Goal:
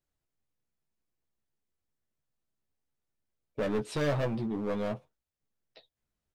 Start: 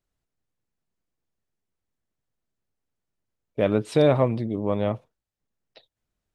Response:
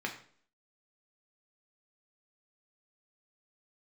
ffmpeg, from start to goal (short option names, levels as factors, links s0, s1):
-filter_complex "[0:a]volume=14.1,asoftclip=hard,volume=0.0708,asplit=2[s0][s1];[s1]adelay=14,volume=0.531[s2];[s0][s2]amix=inputs=2:normalize=0,volume=0.562"